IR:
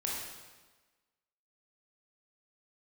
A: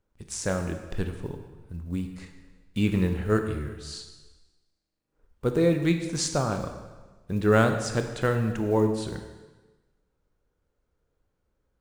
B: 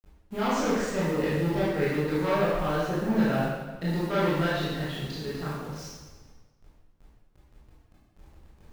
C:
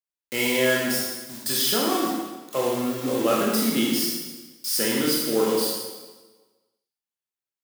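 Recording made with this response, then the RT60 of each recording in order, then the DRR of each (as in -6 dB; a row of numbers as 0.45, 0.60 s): C; 1.3, 1.3, 1.3 s; 5.5, -10.0, -4.0 dB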